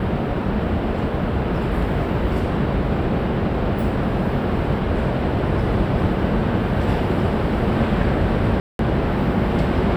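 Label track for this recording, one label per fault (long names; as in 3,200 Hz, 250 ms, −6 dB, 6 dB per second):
8.600000	8.790000	drop-out 192 ms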